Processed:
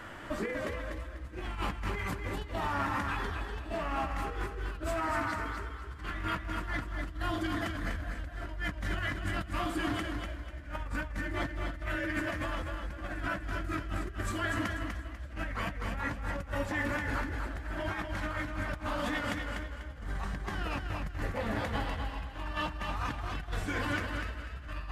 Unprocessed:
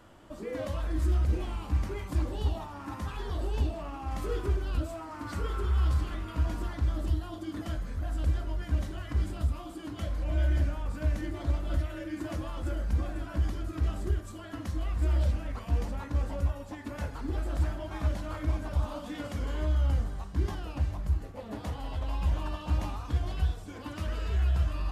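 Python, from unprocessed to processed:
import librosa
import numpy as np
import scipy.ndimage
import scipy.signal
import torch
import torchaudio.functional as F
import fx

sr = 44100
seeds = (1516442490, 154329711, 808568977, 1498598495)

p1 = fx.peak_eq(x, sr, hz=1800.0, db=12.5, octaves=1.1)
p2 = fx.over_compress(p1, sr, threshold_db=-38.0, ratio=-1.0)
y = p2 + fx.echo_feedback(p2, sr, ms=246, feedback_pct=30, wet_db=-5.5, dry=0)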